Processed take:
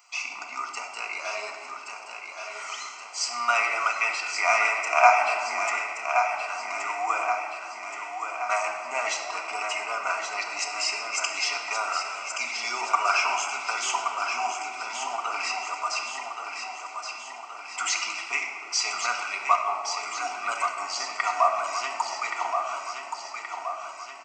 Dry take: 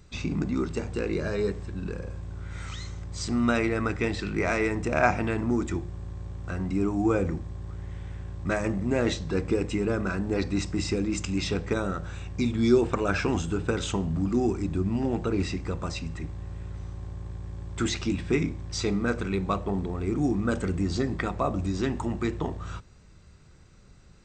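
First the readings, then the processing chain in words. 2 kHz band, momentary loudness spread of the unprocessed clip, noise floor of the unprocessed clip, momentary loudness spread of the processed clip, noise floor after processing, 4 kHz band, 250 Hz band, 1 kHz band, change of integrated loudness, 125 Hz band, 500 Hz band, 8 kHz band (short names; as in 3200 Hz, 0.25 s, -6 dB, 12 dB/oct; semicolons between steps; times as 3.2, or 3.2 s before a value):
+7.5 dB, 14 LU, -52 dBFS, 12 LU, -41 dBFS, +7.0 dB, -27.5 dB, +10.5 dB, +1.5 dB, under -40 dB, -5.0 dB, +9.5 dB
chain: Chebyshev high-pass 600 Hz, order 4; fixed phaser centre 2500 Hz, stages 8; feedback echo 1.124 s, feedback 56%, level -6.5 dB; shoebox room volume 3500 m³, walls mixed, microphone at 1.8 m; gain +9 dB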